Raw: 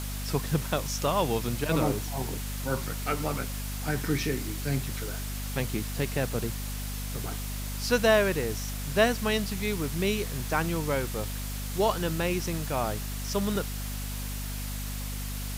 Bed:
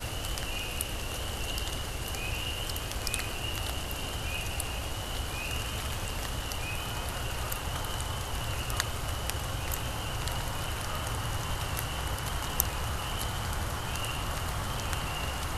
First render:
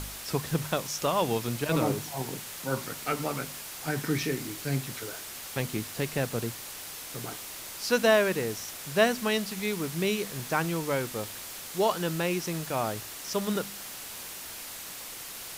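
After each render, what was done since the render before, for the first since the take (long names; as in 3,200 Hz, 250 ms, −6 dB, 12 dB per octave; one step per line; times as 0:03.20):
hum removal 50 Hz, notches 5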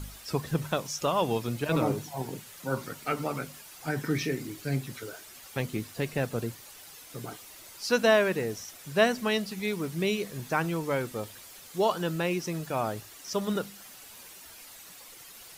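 broadband denoise 10 dB, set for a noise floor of −41 dBFS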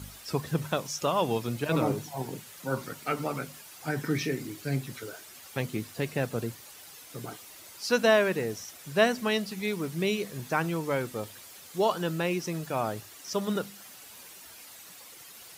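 high-pass filter 67 Hz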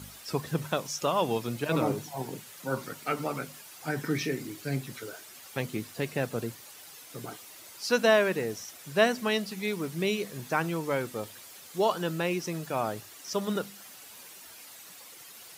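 low-shelf EQ 72 Hz −10 dB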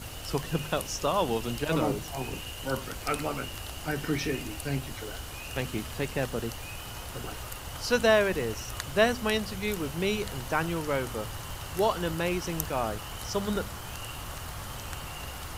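mix in bed −6 dB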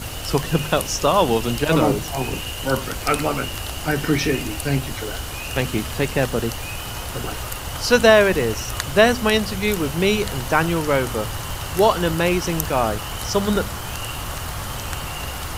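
level +10 dB
brickwall limiter −1 dBFS, peak gain reduction 2.5 dB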